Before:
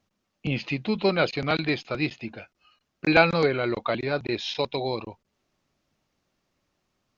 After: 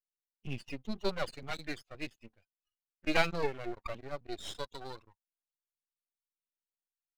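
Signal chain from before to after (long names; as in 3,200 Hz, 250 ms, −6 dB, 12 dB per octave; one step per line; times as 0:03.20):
spectral dynamics exaggerated over time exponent 2
half-wave rectification
level −3.5 dB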